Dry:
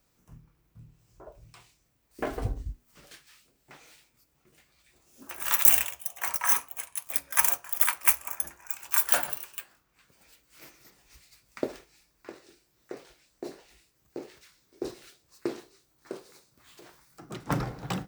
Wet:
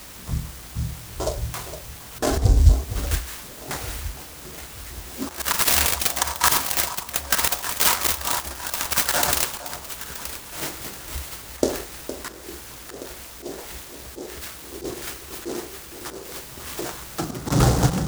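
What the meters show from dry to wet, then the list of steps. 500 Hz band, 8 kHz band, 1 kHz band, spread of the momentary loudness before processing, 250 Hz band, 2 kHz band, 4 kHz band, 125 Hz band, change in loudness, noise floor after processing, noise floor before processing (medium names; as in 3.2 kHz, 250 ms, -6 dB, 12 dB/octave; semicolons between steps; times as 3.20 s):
+10.0 dB, +7.5 dB, +9.5 dB, 23 LU, +10.5 dB, +7.5 dB, +14.5 dB, no reading, +2.0 dB, -40 dBFS, -71 dBFS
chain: band-stop 2.4 kHz; in parallel at -11.5 dB: word length cut 8-bit, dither triangular; on the sum: slow attack 279 ms; flange 0.36 Hz, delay 8.1 ms, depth 9.8 ms, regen -83%; hum 60 Hz, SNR 35 dB; peaking EQ 69 Hz +10.5 dB 0.43 oct; on a send: echo whose repeats swap between lows and highs 462 ms, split 1.2 kHz, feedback 65%, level -12 dB; on the sum: loudness maximiser +26 dB; delay time shaken by noise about 5.6 kHz, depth 0.084 ms; trim -2 dB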